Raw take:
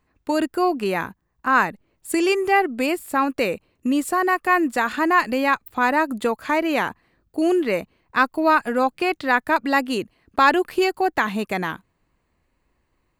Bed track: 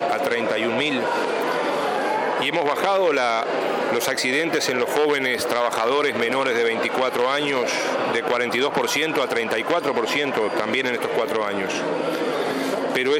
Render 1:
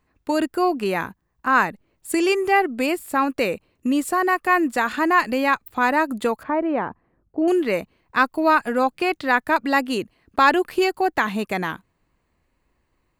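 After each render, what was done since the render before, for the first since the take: 6.43–7.48 LPF 1100 Hz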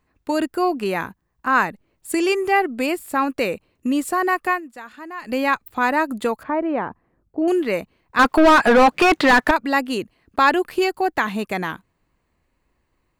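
4.48–5.34 dip -16 dB, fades 0.13 s; 8.19–9.51 overdrive pedal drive 31 dB, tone 1700 Hz, clips at -4.5 dBFS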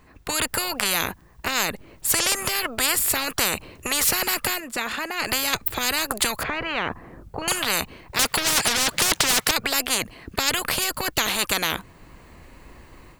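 AGC gain up to 8 dB; spectral compressor 10:1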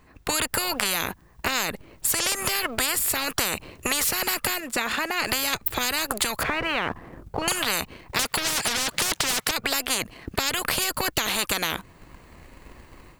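sample leveller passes 1; compressor, threshold -21 dBFS, peak gain reduction 9 dB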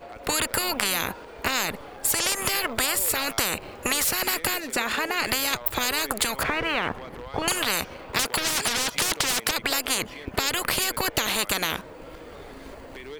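add bed track -20 dB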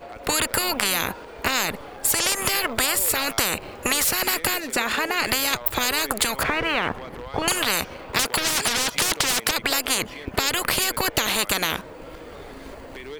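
gain +2.5 dB; limiter -2 dBFS, peak gain reduction 1 dB

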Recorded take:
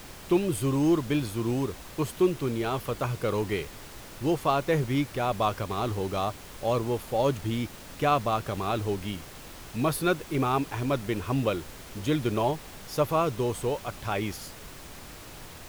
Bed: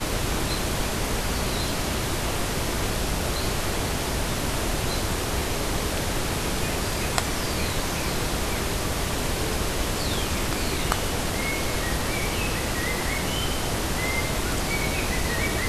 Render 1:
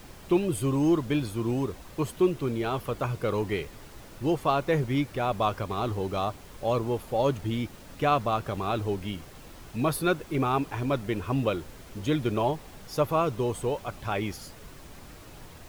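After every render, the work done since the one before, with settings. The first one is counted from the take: denoiser 6 dB, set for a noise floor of -45 dBFS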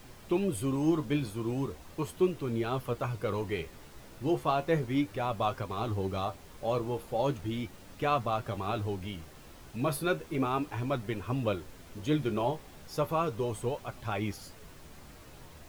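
flange 0.36 Hz, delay 7.5 ms, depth 7.8 ms, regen +56%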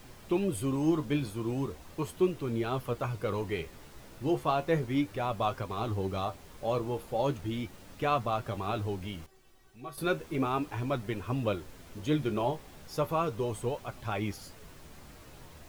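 9.26–9.98 resonator 380 Hz, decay 0.17 s, mix 90%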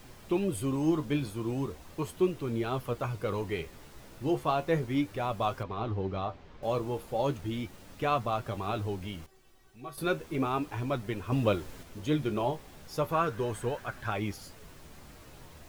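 5.63–6.63 air absorption 200 m; 11.32–11.83 gain +4 dB; 13.12–14.11 bell 1600 Hz +14 dB 0.43 oct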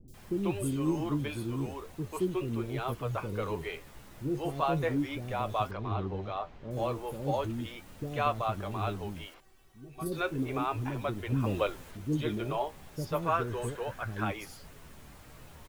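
three bands offset in time lows, highs, mids 80/140 ms, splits 400/4900 Hz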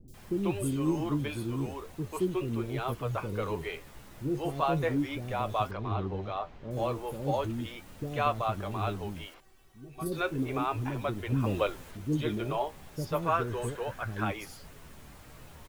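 gain +1 dB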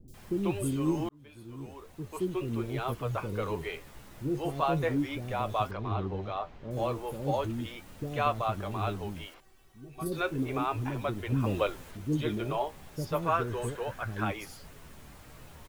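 1.09–2.6 fade in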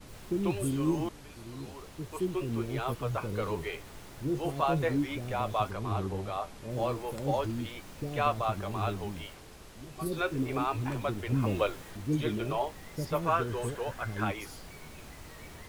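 add bed -25 dB

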